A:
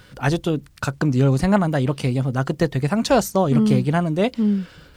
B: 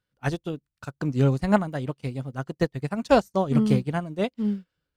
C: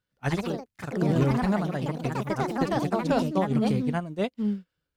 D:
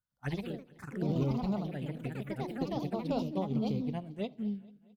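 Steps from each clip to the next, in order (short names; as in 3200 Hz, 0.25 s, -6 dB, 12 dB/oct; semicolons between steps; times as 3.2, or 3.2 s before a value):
upward expander 2.5:1, over -36 dBFS
limiter -14.5 dBFS, peak gain reduction 7.5 dB; echoes that change speed 0.102 s, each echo +3 st, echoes 3; gain -1.5 dB
envelope phaser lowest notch 400 Hz, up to 1700 Hz, full sweep at -21.5 dBFS; feedback echo 0.219 s, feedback 58%, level -23 dB; on a send at -20 dB: reverb RT60 0.45 s, pre-delay 4 ms; on the sum: gain -7.5 dB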